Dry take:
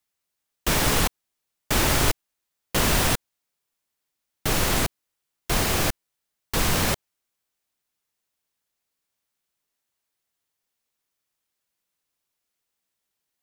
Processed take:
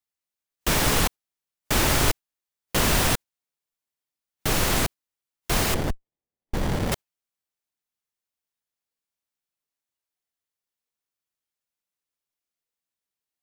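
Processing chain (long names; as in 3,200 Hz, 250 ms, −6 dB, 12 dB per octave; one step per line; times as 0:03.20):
noise reduction from a noise print of the clip's start 9 dB
0:05.74–0:06.92: windowed peak hold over 33 samples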